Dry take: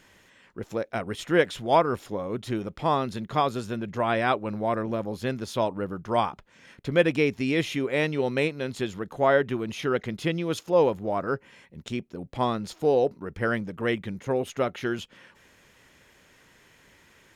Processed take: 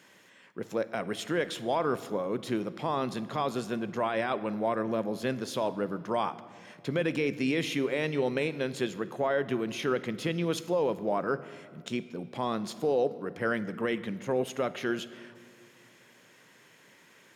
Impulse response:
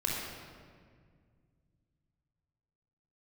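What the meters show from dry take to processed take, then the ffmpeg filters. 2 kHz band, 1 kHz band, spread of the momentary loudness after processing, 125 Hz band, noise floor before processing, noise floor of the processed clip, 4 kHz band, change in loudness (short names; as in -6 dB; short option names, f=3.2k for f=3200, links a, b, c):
-4.5 dB, -5.5 dB, 7 LU, -5.5 dB, -59 dBFS, -59 dBFS, -3.0 dB, -4.0 dB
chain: -filter_complex "[0:a]highpass=f=140:w=0.5412,highpass=f=140:w=1.3066,alimiter=limit=-18dB:level=0:latency=1:release=30,asplit=2[a][b];[1:a]atrim=start_sample=2205,highshelf=f=7.8k:g=7[c];[b][c]afir=irnorm=-1:irlink=0,volume=-19dB[d];[a][d]amix=inputs=2:normalize=0,volume=-1.5dB"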